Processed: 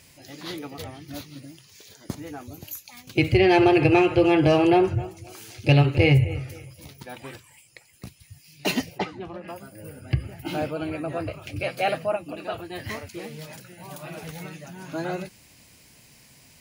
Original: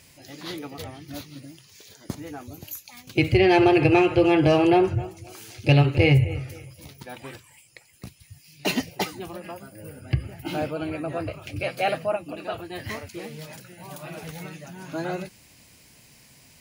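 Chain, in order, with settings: 8.98–9.48 Bessel low-pass 2400 Hz, order 2

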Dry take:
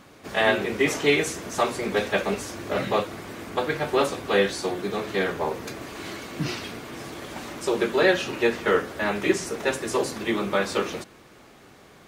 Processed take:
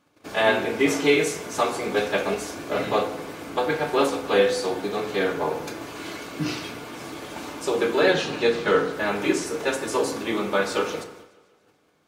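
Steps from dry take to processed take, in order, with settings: 8.11–8.93 thirty-one-band EQ 160 Hz +11 dB, 4000 Hz +7 dB, 12500 Hz -12 dB; FDN reverb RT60 0.85 s, low-frequency decay 0.85×, high-frequency decay 0.5×, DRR 5 dB; gate -46 dBFS, range -16 dB; low shelf 88 Hz -9.5 dB; notch 1900 Hz, Q 12; warbling echo 0.146 s, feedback 58%, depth 65 cents, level -22 dB

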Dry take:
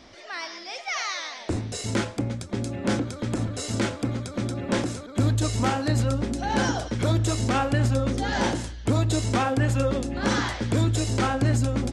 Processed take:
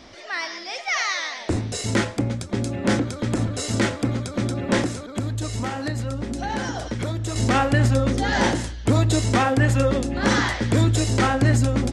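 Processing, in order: dynamic EQ 1900 Hz, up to +6 dB, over -50 dBFS, Q 6.7; 4.86–7.36 compressor, threshold -28 dBFS, peak gain reduction 10 dB; gain +4 dB

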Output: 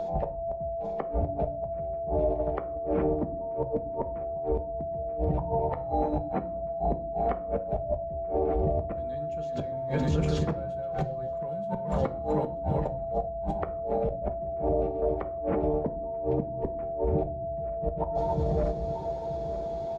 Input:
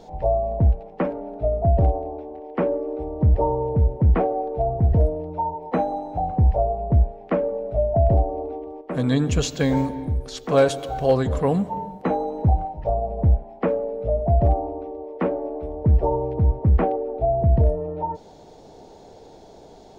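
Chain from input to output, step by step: regenerating reverse delay 0.466 s, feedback 51%, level -7.5 dB; gate -29 dBFS, range -11 dB; HPF 45 Hz 12 dB/oct; high shelf 4100 Hz -9.5 dB; comb 5.9 ms, depth 38%; flipped gate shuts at -15 dBFS, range -37 dB; in parallel at +3 dB: compressor, threshold -35 dBFS, peak gain reduction 13.5 dB; on the sum: whine 670 Hz -33 dBFS; limiter -21 dBFS, peak gain reduction 10 dB; reverb RT60 0.50 s, pre-delay 5 ms, DRR 7 dB; three-band squash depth 40%; gain +2 dB

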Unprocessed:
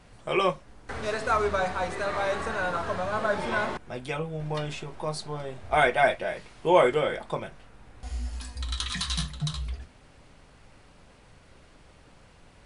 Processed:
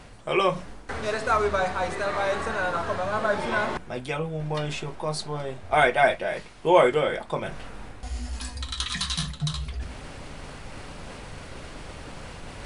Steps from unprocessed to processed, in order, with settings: notches 60/120/180 Hz; reverse; upward compressor, threshold -28 dBFS; reverse; gain +2 dB

